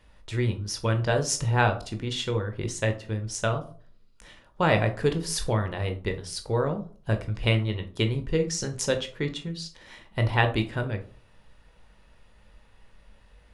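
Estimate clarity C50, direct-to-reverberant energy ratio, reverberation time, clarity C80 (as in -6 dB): 13.0 dB, 6.0 dB, 0.45 s, 18.0 dB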